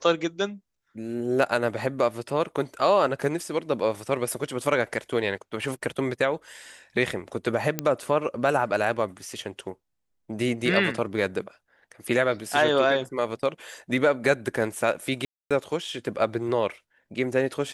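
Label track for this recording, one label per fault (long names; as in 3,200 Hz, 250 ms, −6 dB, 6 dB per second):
7.790000	7.790000	click −9 dBFS
15.250000	15.510000	drop-out 256 ms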